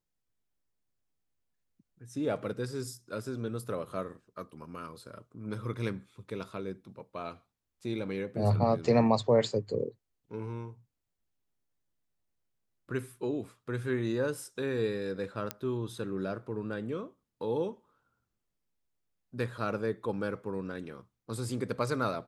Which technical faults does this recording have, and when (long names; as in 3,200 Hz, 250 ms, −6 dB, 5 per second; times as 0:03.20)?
0:15.51: click −16 dBFS